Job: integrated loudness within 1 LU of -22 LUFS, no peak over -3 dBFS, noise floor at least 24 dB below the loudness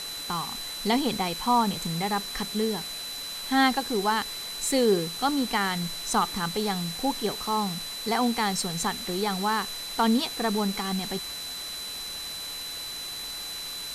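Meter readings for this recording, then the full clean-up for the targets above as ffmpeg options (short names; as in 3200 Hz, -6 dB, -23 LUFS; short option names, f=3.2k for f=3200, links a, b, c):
steady tone 4000 Hz; tone level -35 dBFS; noise floor -36 dBFS; noise floor target -52 dBFS; loudness -27.5 LUFS; peak -11.0 dBFS; loudness target -22.0 LUFS
-> -af "bandreject=f=4k:w=30"
-af "afftdn=nr=16:nf=-36"
-af "volume=5.5dB"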